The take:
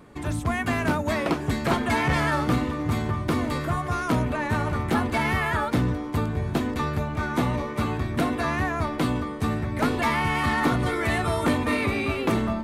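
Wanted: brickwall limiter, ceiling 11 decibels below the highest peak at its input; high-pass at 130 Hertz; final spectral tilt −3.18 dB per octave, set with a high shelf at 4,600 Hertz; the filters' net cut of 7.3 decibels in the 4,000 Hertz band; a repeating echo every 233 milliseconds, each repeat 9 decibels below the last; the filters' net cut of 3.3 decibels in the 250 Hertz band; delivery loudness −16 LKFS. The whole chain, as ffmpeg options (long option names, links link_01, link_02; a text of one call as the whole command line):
ffmpeg -i in.wav -af "highpass=130,equalizer=frequency=250:width_type=o:gain=-3.5,equalizer=frequency=4000:width_type=o:gain=-8,highshelf=frequency=4600:gain=-3.5,alimiter=limit=-23dB:level=0:latency=1,aecho=1:1:233|466|699|932:0.355|0.124|0.0435|0.0152,volume=15.5dB" out.wav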